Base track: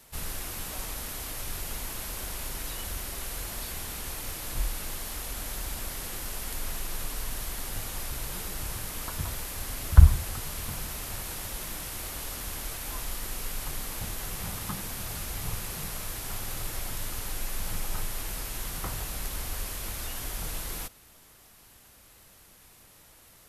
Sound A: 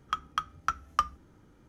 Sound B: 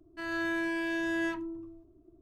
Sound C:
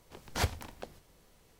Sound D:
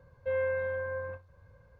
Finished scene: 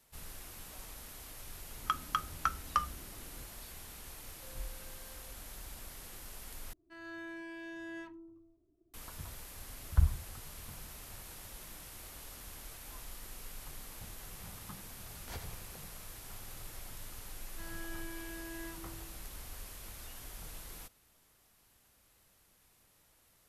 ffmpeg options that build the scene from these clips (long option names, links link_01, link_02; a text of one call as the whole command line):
ffmpeg -i bed.wav -i cue0.wav -i cue1.wav -i cue2.wav -i cue3.wav -filter_complex "[2:a]asplit=2[link_01][link_02];[0:a]volume=-12.5dB[link_03];[1:a]alimiter=level_in=17.5dB:limit=-1dB:release=50:level=0:latency=1[link_04];[4:a]acompressor=threshold=-44dB:ratio=6:attack=3.2:release=140:knee=1:detection=peak[link_05];[3:a]aecho=1:1:86|172|258|344|430|516|602:0.376|0.214|0.122|0.0696|0.0397|0.0226|0.0129[link_06];[link_02]asoftclip=type=tanh:threshold=-27.5dB[link_07];[link_03]asplit=2[link_08][link_09];[link_08]atrim=end=6.734[link_10];[link_01]atrim=end=2.21,asetpts=PTS-STARTPTS,volume=-13.5dB[link_11];[link_09]atrim=start=8.936[link_12];[link_04]atrim=end=1.68,asetpts=PTS-STARTPTS,volume=-15dB,afade=type=in:duration=0.004:curve=hsin,afade=type=out:start_time=1.676:duration=0.004:curve=hsin,adelay=1770[link_13];[link_05]atrim=end=1.79,asetpts=PTS-STARTPTS,volume=-15dB,afade=type=in:duration=0.004:curve=hsin,afade=type=out:start_time=1.786:duration=0.004:curve=hsin,adelay=183897S[link_14];[link_06]atrim=end=1.59,asetpts=PTS-STARTPTS,volume=-15dB,afade=type=in:duration=0.004:curve=hsin,afade=type=out:start_time=1.586:duration=0.004:curve=hsin,adelay=657972S[link_15];[link_07]atrim=end=2.21,asetpts=PTS-STARTPTS,volume=-13dB,afade=type=in:duration=0.004:curve=hsin,afade=type=out:start_time=2.206:duration=0.004:curve=hsin,adelay=17400[link_16];[link_10][link_11]acrossfade=duration=0.004:curve1=hsin:curve2=hsin[link_17];[link_17][link_12]acrossfade=duration=0.004:curve1=hsin:curve2=hsin[link_18];[link_18][link_13][link_14][link_15][link_16]amix=inputs=5:normalize=0" out.wav